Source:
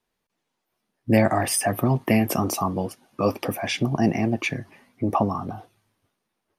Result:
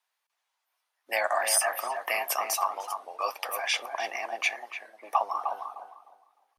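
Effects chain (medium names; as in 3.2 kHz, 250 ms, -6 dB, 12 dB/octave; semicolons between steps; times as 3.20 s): high-pass 770 Hz 24 dB/octave; filtered feedback delay 305 ms, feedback 29%, low-pass 1.1 kHz, level -4 dB; warped record 33 1/3 rpm, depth 100 cents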